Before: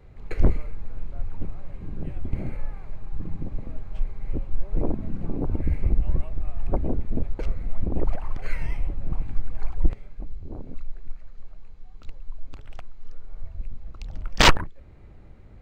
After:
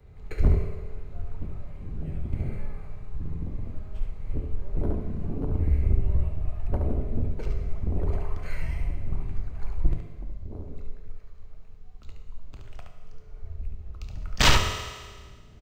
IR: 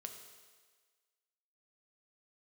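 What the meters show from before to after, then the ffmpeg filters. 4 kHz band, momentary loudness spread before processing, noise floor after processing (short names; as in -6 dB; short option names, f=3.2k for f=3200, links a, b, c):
-1.0 dB, 19 LU, -47 dBFS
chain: -filter_complex "[0:a]highshelf=f=6.6k:g=7,aecho=1:1:71:0.562,acrossover=split=250|820|3800[a][b][c][d];[b]volume=25dB,asoftclip=hard,volume=-25dB[e];[a][e][c][d]amix=inputs=4:normalize=0,equalizer=f=76:w=0.91:g=6.5[f];[1:a]atrim=start_sample=2205[g];[f][g]afir=irnorm=-1:irlink=0"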